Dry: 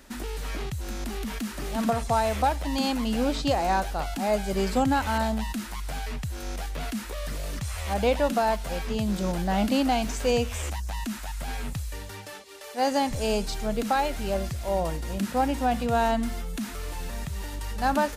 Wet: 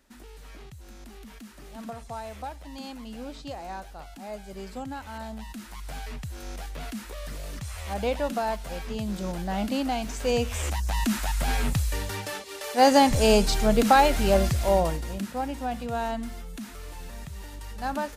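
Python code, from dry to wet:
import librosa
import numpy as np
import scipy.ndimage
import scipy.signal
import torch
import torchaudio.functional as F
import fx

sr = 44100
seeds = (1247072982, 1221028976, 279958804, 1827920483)

y = fx.gain(x, sr, db=fx.line((5.1, -13.0), (5.93, -4.0), (10.05, -4.0), (11.11, 7.0), (14.63, 7.0), (15.34, -6.0)))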